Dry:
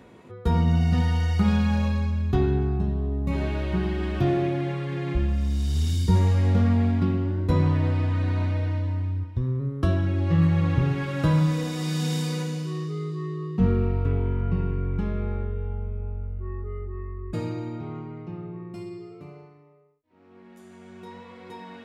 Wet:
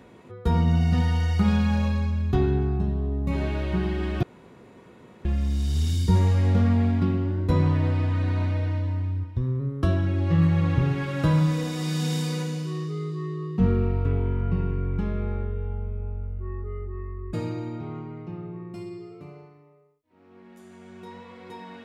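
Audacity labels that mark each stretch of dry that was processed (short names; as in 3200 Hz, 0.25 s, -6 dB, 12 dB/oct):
4.230000	5.250000	room tone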